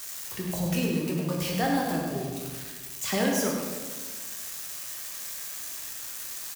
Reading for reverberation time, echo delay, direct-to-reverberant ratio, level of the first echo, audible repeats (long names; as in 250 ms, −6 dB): 1.4 s, 101 ms, −2.0 dB, −8.0 dB, 1